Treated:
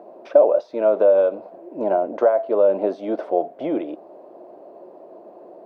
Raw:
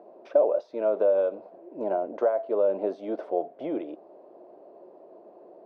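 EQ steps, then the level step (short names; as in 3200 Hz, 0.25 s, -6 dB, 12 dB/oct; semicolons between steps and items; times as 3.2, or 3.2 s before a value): bell 420 Hz -3 dB 0.42 oct; +8.0 dB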